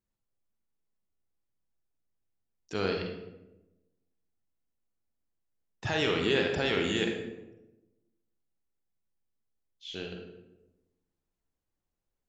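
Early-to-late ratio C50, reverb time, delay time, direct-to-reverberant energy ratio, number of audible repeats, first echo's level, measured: 3.5 dB, 1.0 s, no echo, 2.0 dB, no echo, no echo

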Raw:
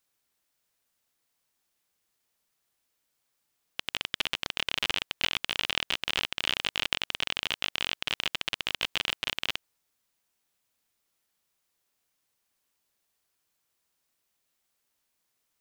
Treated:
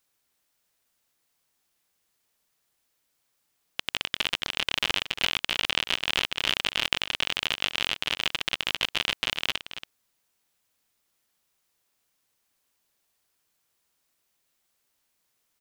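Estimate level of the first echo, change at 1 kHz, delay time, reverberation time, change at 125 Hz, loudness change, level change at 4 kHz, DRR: -11.5 dB, +3.5 dB, 279 ms, no reverb, +3.0 dB, +3.5 dB, +3.0 dB, no reverb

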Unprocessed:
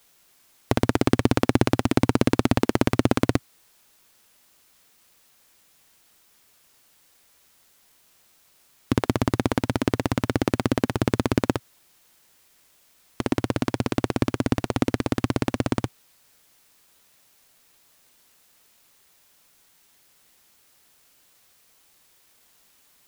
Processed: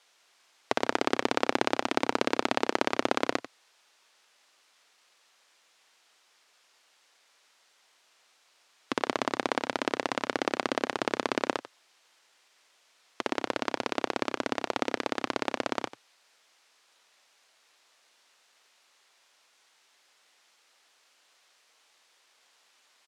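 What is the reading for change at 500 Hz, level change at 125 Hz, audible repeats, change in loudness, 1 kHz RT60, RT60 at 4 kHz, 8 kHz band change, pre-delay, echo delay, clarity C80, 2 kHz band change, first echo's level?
-4.0 dB, -24.0 dB, 1, -6.0 dB, no reverb, no reverb, -5.5 dB, no reverb, 92 ms, no reverb, 0.0 dB, -14.0 dB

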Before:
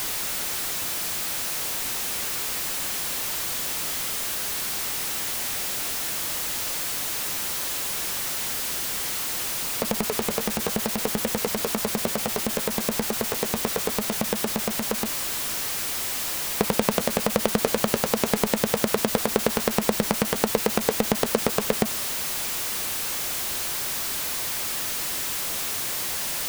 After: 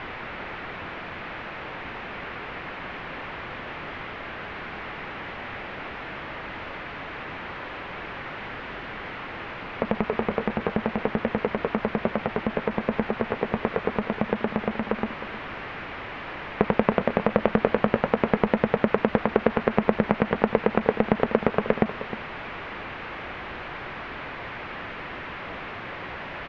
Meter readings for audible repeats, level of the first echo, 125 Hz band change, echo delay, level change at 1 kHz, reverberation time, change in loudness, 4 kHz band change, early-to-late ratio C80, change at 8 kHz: 1, -13.5 dB, +2.0 dB, 310 ms, +2.0 dB, no reverb, -3.5 dB, -12.5 dB, no reverb, under -40 dB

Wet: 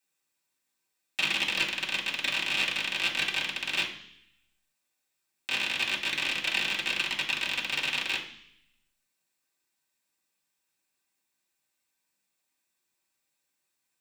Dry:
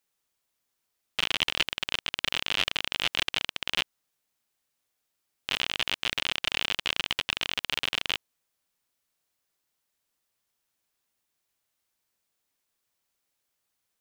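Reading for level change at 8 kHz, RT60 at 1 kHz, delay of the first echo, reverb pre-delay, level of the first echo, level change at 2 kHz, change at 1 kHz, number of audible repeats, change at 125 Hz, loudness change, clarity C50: +0.5 dB, 0.65 s, no echo, 3 ms, no echo, +3.0 dB, -1.5 dB, no echo, -2.5 dB, +0.5 dB, 8.5 dB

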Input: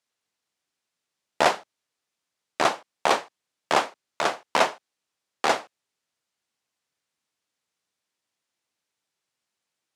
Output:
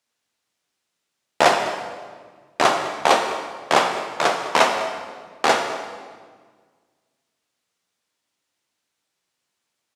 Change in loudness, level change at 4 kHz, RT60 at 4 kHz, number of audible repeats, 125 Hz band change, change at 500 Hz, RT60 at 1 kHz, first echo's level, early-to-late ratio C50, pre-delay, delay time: +4.5 dB, +5.5 dB, 1.3 s, 1, +6.0 dB, +6.0 dB, 1.5 s, -16.0 dB, 5.0 dB, 7 ms, 204 ms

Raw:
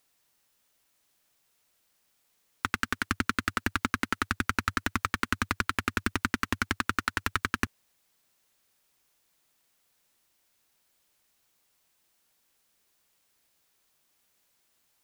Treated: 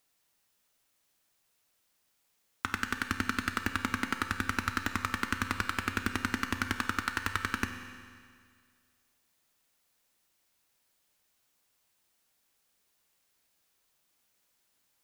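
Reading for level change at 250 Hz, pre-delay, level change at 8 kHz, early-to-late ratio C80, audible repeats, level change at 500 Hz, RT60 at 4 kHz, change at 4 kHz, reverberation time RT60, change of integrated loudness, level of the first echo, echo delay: -2.0 dB, 11 ms, -2.5 dB, 9.0 dB, no echo, -3.0 dB, 2.0 s, -2.5 dB, 2.0 s, -2.5 dB, no echo, no echo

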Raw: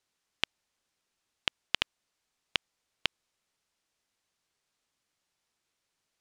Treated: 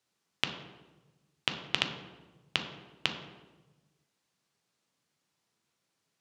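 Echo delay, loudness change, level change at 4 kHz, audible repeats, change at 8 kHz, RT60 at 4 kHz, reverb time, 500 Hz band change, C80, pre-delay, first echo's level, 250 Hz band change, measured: no echo, +0.5 dB, +0.5 dB, no echo, +0.5 dB, 0.80 s, 1.2 s, +4.0 dB, 9.0 dB, 6 ms, no echo, +7.5 dB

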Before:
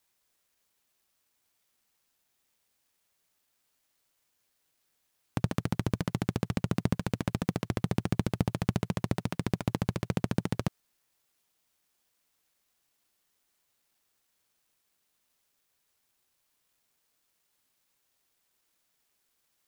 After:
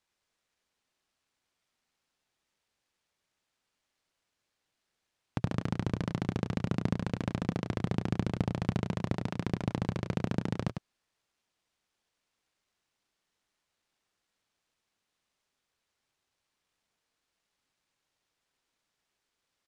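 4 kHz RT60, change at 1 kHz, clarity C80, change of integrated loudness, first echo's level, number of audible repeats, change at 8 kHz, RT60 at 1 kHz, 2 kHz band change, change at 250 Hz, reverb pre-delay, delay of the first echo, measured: no reverb, -1.5 dB, no reverb, -1.5 dB, -7.0 dB, 1, -7.5 dB, no reverb, -2.0 dB, -1.5 dB, no reverb, 101 ms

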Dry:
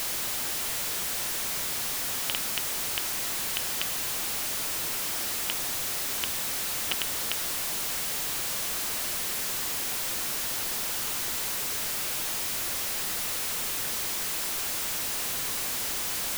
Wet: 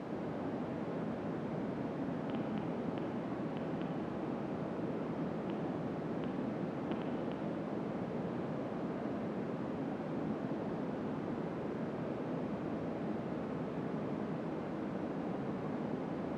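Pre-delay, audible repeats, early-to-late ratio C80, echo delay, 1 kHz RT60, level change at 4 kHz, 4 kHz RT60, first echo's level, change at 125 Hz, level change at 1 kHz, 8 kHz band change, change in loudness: 37 ms, no echo, 5.0 dB, no echo, 1.3 s, -28.0 dB, 1.2 s, no echo, +6.0 dB, -5.0 dB, under -40 dB, -11.5 dB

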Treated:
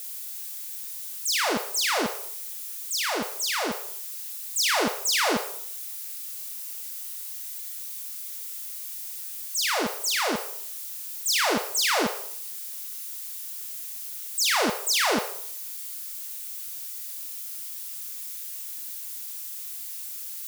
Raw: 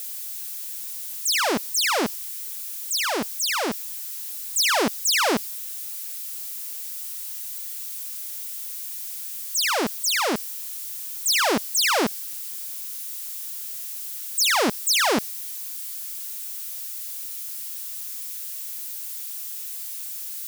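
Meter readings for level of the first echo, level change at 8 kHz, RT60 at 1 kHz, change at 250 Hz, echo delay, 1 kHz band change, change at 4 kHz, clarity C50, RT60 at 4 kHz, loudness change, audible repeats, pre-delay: no echo, -3.0 dB, 0.65 s, -4.0 dB, no echo, -2.5 dB, -2.5 dB, 7.5 dB, 0.45 s, -2.5 dB, no echo, 21 ms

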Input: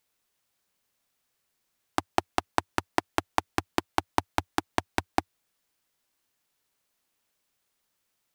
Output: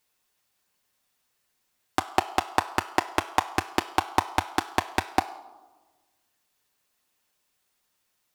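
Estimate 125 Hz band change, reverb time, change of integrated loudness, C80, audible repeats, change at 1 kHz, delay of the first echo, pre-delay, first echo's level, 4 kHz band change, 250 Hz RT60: +1.5 dB, 1.3 s, +3.0 dB, 16.0 dB, no echo, +3.5 dB, no echo, 6 ms, no echo, +3.5 dB, 1.6 s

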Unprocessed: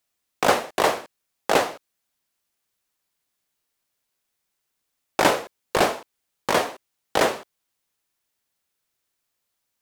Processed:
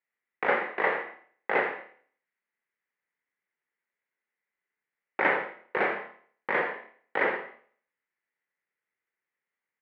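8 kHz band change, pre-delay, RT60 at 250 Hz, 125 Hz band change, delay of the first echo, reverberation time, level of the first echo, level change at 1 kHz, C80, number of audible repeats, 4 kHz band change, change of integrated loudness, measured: under -40 dB, 26 ms, 0.55 s, -13.5 dB, 85 ms, 0.50 s, -12.0 dB, -7.0 dB, 9.0 dB, 1, -18.0 dB, -5.5 dB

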